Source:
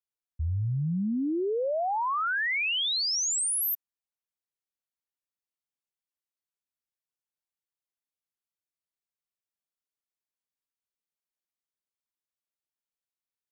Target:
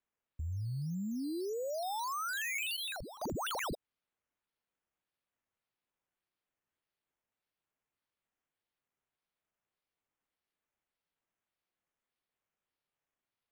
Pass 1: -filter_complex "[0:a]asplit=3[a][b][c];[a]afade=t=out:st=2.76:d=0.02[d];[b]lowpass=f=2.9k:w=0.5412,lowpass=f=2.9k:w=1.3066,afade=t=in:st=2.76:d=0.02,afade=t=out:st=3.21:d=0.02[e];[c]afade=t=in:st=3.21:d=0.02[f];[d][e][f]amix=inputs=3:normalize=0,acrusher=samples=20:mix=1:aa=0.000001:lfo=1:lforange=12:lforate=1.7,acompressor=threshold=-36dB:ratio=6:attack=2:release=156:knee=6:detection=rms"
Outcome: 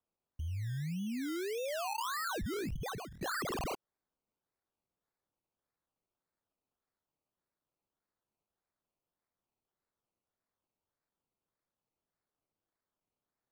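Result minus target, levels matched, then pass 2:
decimation with a swept rate: distortion +5 dB
-filter_complex "[0:a]asplit=3[a][b][c];[a]afade=t=out:st=2.76:d=0.02[d];[b]lowpass=f=2.9k:w=0.5412,lowpass=f=2.9k:w=1.3066,afade=t=in:st=2.76:d=0.02,afade=t=out:st=3.21:d=0.02[e];[c]afade=t=in:st=3.21:d=0.02[f];[d][e][f]amix=inputs=3:normalize=0,acrusher=samples=8:mix=1:aa=0.000001:lfo=1:lforange=4.8:lforate=1.7,acompressor=threshold=-36dB:ratio=6:attack=2:release=156:knee=6:detection=rms"

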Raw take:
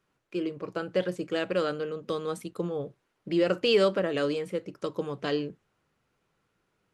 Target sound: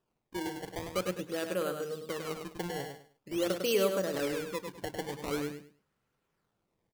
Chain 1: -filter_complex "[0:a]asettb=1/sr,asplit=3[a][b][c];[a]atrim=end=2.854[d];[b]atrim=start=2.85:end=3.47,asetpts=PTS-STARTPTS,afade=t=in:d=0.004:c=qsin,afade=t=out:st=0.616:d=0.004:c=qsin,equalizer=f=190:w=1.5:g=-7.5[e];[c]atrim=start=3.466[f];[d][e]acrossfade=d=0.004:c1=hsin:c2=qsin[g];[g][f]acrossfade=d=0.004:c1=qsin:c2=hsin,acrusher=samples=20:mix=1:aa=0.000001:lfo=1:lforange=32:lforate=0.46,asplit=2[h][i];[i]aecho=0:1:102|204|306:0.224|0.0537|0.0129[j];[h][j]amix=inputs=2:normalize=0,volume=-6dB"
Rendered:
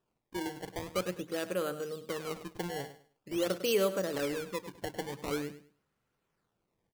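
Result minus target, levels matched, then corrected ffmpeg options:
echo-to-direct -7 dB
-filter_complex "[0:a]asettb=1/sr,asplit=3[a][b][c];[a]atrim=end=2.854[d];[b]atrim=start=2.85:end=3.47,asetpts=PTS-STARTPTS,afade=t=in:d=0.004:c=qsin,afade=t=out:st=0.616:d=0.004:c=qsin,equalizer=f=190:w=1.5:g=-7.5[e];[c]atrim=start=3.466[f];[d][e]acrossfade=d=0.004:c1=hsin:c2=qsin[g];[g][f]acrossfade=d=0.004:c1=qsin:c2=hsin,acrusher=samples=20:mix=1:aa=0.000001:lfo=1:lforange=32:lforate=0.46,asplit=2[h][i];[i]aecho=0:1:102|204|306:0.501|0.12|0.0289[j];[h][j]amix=inputs=2:normalize=0,volume=-6dB"

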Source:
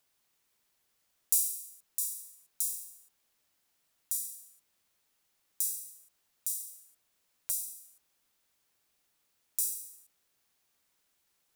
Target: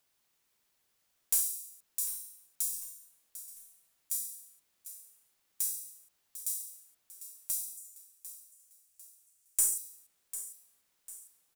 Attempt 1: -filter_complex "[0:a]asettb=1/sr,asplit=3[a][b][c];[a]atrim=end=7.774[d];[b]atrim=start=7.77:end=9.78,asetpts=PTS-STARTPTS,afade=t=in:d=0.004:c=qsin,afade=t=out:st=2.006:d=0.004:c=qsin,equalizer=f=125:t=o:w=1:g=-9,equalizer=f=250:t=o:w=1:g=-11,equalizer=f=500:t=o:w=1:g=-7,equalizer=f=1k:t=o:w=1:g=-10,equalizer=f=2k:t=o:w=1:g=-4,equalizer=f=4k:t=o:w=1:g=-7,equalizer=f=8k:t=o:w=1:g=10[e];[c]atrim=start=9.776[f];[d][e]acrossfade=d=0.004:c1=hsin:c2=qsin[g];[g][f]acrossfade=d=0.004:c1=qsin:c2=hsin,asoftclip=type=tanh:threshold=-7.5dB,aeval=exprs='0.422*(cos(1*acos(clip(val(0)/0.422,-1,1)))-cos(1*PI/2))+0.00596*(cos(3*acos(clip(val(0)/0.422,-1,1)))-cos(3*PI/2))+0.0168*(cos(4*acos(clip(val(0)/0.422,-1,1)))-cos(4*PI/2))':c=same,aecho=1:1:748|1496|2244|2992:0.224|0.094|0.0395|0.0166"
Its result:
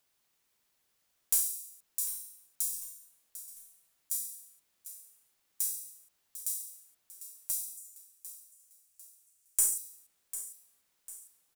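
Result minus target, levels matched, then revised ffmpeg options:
soft clip: distortion -6 dB
-filter_complex "[0:a]asettb=1/sr,asplit=3[a][b][c];[a]atrim=end=7.774[d];[b]atrim=start=7.77:end=9.78,asetpts=PTS-STARTPTS,afade=t=in:d=0.004:c=qsin,afade=t=out:st=2.006:d=0.004:c=qsin,equalizer=f=125:t=o:w=1:g=-9,equalizer=f=250:t=o:w=1:g=-11,equalizer=f=500:t=o:w=1:g=-7,equalizer=f=1k:t=o:w=1:g=-10,equalizer=f=2k:t=o:w=1:g=-4,equalizer=f=4k:t=o:w=1:g=-7,equalizer=f=8k:t=o:w=1:g=10[e];[c]atrim=start=9.776[f];[d][e]acrossfade=d=0.004:c1=hsin:c2=qsin[g];[g][f]acrossfade=d=0.004:c1=qsin:c2=hsin,asoftclip=type=tanh:threshold=-13.5dB,aeval=exprs='0.422*(cos(1*acos(clip(val(0)/0.422,-1,1)))-cos(1*PI/2))+0.00596*(cos(3*acos(clip(val(0)/0.422,-1,1)))-cos(3*PI/2))+0.0168*(cos(4*acos(clip(val(0)/0.422,-1,1)))-cos(4*PI/2))':c=same,aecho=1:1:748|1496|2244|2992:0.224|0.094|0.0395|0.0166"

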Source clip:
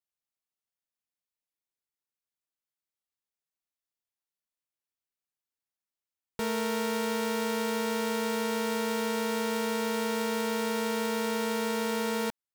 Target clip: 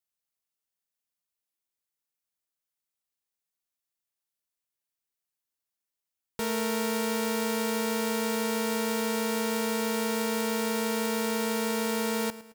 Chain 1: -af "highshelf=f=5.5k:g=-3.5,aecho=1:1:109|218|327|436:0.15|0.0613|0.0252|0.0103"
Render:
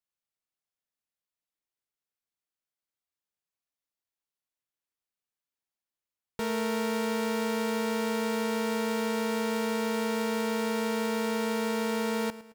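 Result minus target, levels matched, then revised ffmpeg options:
8000 Hz band -5.5 dB
-af "highshelf=f=5.5k:g=6,aecho=1:1:109|218|327|436:0.15|0.0613|0.0252|0.0103"

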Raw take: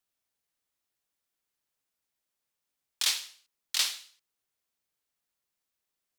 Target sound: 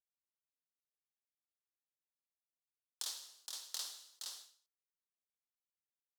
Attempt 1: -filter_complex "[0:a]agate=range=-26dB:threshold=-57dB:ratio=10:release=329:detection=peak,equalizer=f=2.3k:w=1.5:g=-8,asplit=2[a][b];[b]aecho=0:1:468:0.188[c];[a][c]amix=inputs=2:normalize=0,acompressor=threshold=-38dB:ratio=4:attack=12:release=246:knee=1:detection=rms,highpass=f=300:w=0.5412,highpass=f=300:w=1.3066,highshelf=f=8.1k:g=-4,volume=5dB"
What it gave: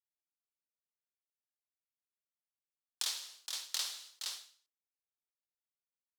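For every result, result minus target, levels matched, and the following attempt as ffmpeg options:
2000 Hz band +4.5 dB; compressor: peak gain reduction -3.5 dB
-filter_complex "[0:a]agate=range=-26dB:threshold=-57dB:ratio=10:release=329:detection=peak,equalizer=f=2.3k:w=1.5:g=-18.5,asplit=2[a][b];[b]aecho=0:1:468:0.188[c];[a][c]amix=inputs=2:normalize=0,acompressor=threshold=-38dB:ratio=4:attack=12:release=246:knee=1:detection=rms,highpass=f=300:w=0.5412,highpass=f=300:w=1.3066,highshelf=f=8.1k:g=-4,volume=5dB"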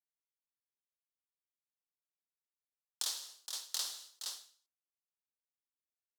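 compressor: peak gain reduction -5 dB
-filter_complex "[0:a]agate=range=-26dB:threshold=-57dB:ratio=10:release=329:detection=peak,equalizer=f=2.3k:w=1.5:g=-18.5,asplit=2[a][b];[b]aecho=0:1:468:0.188[c];[a][c]amix=inputs=2:normalize=0,acompressor=threshold=-45dB:ratio=4:attack=12:release=246:knee=1:detection=rms,highpass=f=300:w=0.5412,highpass=f=300:w=1.3066,highshelf=f=8.1k:g=-4,volume=5dB"

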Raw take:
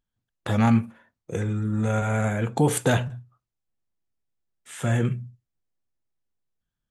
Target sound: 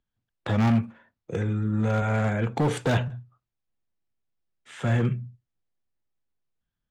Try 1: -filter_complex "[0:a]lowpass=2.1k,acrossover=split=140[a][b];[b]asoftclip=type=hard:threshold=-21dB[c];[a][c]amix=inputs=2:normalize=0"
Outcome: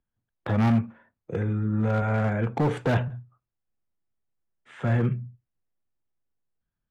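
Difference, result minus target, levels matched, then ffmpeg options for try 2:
4000 Hz band -5.5 dB
-filter_complex "[0:a]lowpass=4.5k,acrossover=split=140[a][b];[b]asoftclip=type=hard:threshold=-21dB[c];[a][c]amix=inputs=2:normalize=0"

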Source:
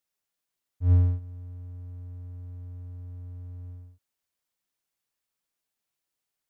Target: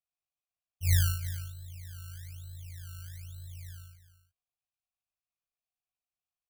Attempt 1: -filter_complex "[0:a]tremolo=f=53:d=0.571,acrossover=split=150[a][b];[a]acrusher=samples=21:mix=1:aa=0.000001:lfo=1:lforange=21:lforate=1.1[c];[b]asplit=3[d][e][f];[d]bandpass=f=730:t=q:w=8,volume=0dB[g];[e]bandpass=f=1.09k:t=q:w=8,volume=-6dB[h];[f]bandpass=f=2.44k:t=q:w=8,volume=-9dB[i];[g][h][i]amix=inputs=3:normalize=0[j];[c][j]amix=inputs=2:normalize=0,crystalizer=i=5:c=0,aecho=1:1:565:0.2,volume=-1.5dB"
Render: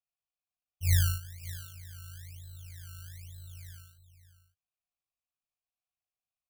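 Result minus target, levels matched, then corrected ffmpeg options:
echo 0.227 s late
-filter_complex "[0:a]tremolo=f=53:d=0.571,acrossover=split=150[a][b];[a]acrusher=samples=21:mix=1:aa=0.000001:lfo=1:lforange=21:lforate=1.1[c];[b]asplit=3[d][e][f];[d]bandpass=f=730:t=q:w=8,volume=0dB[g];[e]bandpass=f=1.09k:t=q:w=8,volume=-6dB[h];[f]bandpass=f=2.44k:t=q:w=8,volume=-9dB[i];[g][h][i]amix=inputs=3:normalize=0[j];[c][j]amix=inputs=2:normalize=0,crystalizer=i=5:c=0,aecho=1:1:338:0.2,volume=-1.5dB"

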